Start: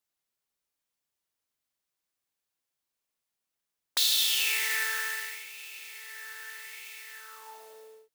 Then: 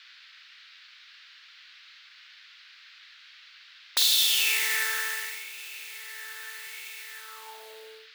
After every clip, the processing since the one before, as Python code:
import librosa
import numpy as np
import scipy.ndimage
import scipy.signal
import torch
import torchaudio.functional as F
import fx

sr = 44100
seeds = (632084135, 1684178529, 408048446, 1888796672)

y = fx.dmg_noise_band(x, sr, seeds[0], low_hz=1400.0, high_hz=4500.0, level_db=-55.0)
y = fx.room_flutter(y, sr, wall_m=8.1, rt60_s=0.25)
y = y * 10.0 ** (2.5 / 20.0)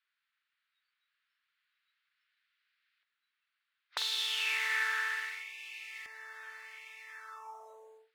y = fx.noise_reduce_blind(x, sr, reduce_db=25)
y = fx.filter_lfo_bandpass(y, sr, shape='saw_up', hz=0.33, low_hz=740.0, high_hz=1700.0, q=0.93)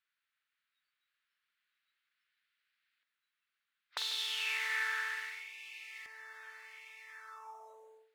y = x + 10.0 ** (-16.0 / 20.0) * np.pad(x, (int(145 * sr / 1000.0), 0))[:len(x)]
y = y * 10.0 ** (-3.0 / 20.0)